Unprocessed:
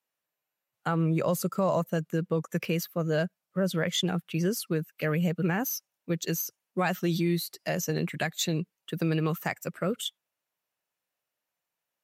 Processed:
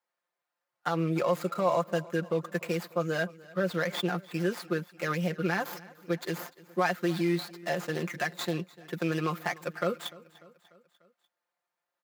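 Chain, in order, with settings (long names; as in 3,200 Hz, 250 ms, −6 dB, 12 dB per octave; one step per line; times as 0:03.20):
running median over 15 samples
high-pass filter 1,000 Hz 6 dB per octave
high-shelf EQ 11,000 Hz +7 dB
in parallel at +2 dB: brickwall limiter −28 dBFS, peak gain reduction 10 dB
on the sum: high-shelf EQ 4,900 Hz −7.5 dB
comb filter 5.7 ms
on a send: repeating echo 296 ms, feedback 58%, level −21.5 dB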